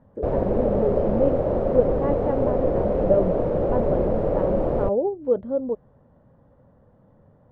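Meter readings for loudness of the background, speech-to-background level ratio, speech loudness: −23.5 LKFS, −3.5 dB, −27.0 LKFS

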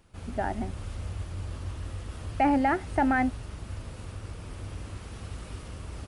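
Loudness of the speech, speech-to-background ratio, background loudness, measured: −27.5 LKFS, 12.0 dB, −39.5 LKFS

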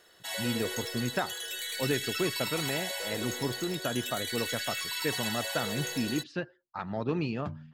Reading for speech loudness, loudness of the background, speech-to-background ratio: −34.5 LKFS, −34.0 LKFS, −0.5 dB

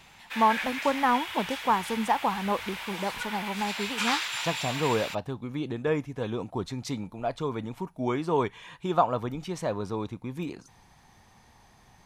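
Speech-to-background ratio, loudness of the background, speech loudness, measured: 3.0 dB, −33.0 LKFS, −30.0 LKFS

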